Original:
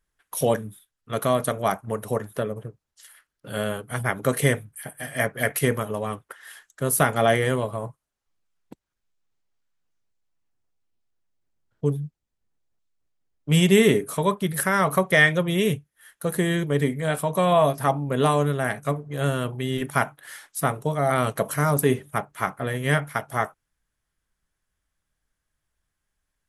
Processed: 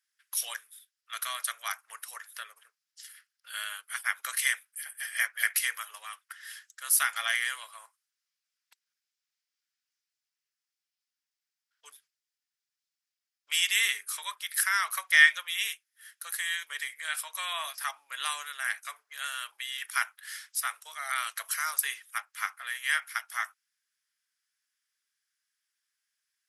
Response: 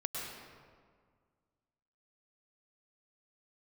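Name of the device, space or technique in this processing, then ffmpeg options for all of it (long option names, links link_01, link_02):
headphones lying on a table: -af "highpass=frequency=1500:width=0.5412,highpass=frequency=1500:width=1.3066,equalizer=frequency=5100:width_type=o:width=0.36:gain=7.5"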